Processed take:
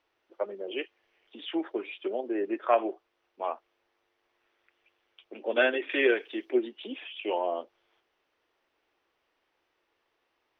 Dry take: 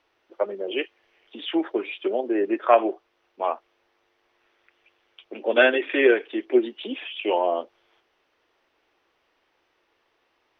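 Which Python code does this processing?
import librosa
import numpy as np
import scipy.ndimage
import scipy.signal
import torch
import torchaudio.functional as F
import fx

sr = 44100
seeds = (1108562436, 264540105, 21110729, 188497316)

y = fx.high_shelf(x, sr, hz=3400.0, db=11.5, at=(5.89, 6.51))
y = F.gain(torch.from_numpy(y), -7.0).numpy()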